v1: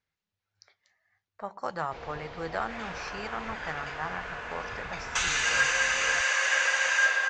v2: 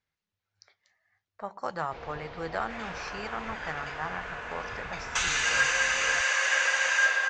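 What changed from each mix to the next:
first sound: add high-frequency loss of the air 62 metres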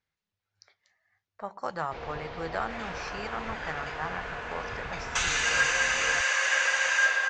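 first sound +3.5 dB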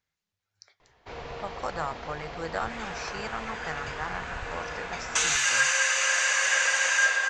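first sound: entry −0.85 s
master: remove high-frequency loss of the air 90 metres

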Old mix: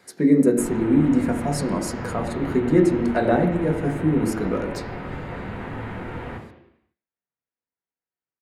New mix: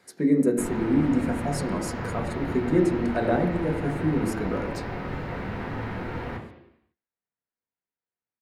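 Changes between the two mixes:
speech −4.5 dB
background: remove Butterworth low-pass 3,800 Hz 48 dB per octave

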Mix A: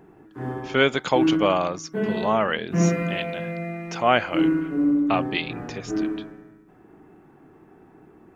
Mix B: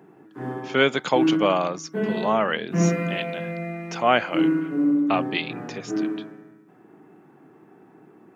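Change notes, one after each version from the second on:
master: add high-pass filter 130 Hz 24 dB per octave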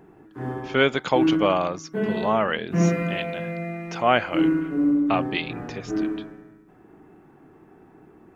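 speech: add high-frequency loss of the air 61 metres
master: remove high-pass filter 130 Hz 24 dB per octave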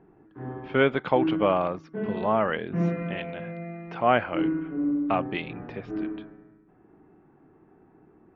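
background −5.0 dB
master: add high-frequency loss of the air 430 metres

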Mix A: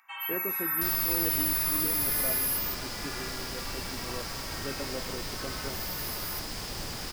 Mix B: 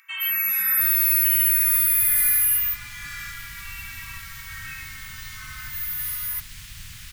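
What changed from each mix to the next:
first sound +10.5 dB
second sound: add parametric band 5,000 Hz −12 dB 0.3 octaves
master: add Chebyshev band-stop filter 110–2,100 Hz, order 2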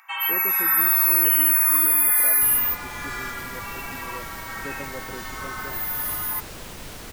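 second sound: entry +1.60 s
master: remove Chebyshev band-stop filter 110–2,100 Hz, order 2

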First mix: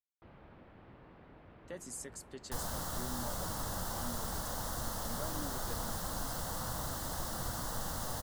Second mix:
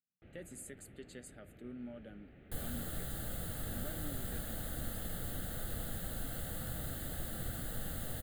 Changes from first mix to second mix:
speech: entry −1.35 s
master: add phaser with its sweep stopped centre 2,400 Hz, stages 4

